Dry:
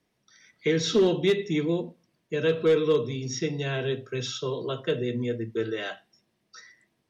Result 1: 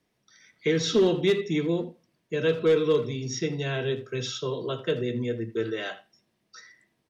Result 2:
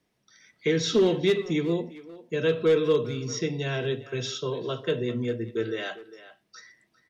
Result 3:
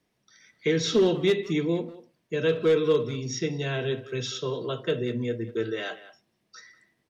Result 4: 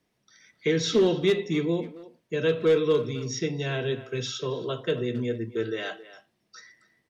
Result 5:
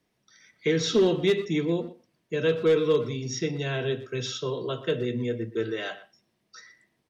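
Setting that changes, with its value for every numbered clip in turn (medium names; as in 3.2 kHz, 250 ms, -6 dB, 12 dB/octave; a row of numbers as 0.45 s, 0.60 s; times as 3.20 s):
speakerphone echo, time: 80 ms, 400 ms, 190 ms, 270 ms, 120 ms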